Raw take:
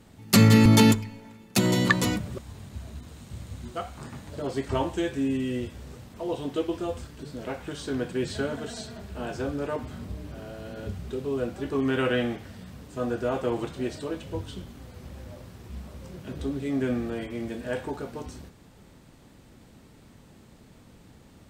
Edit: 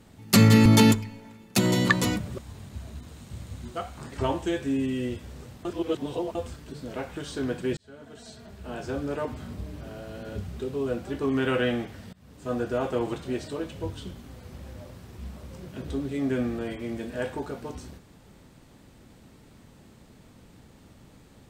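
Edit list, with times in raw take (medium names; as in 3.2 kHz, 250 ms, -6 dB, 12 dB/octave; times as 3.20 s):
4.12–4.63 s: delete
6.16–6.86 s: reverse
8.28–9.57 s: fade in
12.64–13.02 s: fade in, from -23 dB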